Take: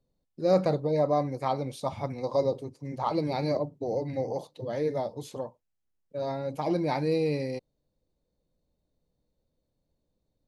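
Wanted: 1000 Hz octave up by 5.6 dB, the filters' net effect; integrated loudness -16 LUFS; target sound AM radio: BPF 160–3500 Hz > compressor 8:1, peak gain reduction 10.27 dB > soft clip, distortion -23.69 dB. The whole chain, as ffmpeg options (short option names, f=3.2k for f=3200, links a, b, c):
-af "highpass=160,lowpass=3.5k,equalizer=f=1k:t=o:g=7.5,acompressor=threshold=-25dB:ratio=8,asoftclip=threshold=-18.5dB,volume=16.5dB"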